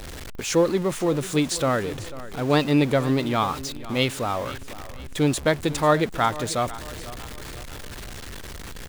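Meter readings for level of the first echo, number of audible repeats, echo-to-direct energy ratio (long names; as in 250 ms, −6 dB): −16.5 dB, 3, −15.5 dB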